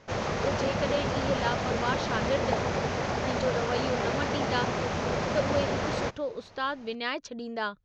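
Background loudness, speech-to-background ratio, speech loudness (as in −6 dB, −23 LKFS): −30.0 LKFS, −3.5 dB, −33.5 LKFS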